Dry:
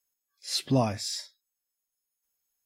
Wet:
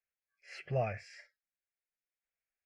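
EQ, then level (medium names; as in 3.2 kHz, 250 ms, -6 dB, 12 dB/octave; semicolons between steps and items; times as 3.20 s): resonant low-pass 2.4 kHz, resonance Q 2.5; static phaser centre 1 kHz, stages 6; -5.0 dB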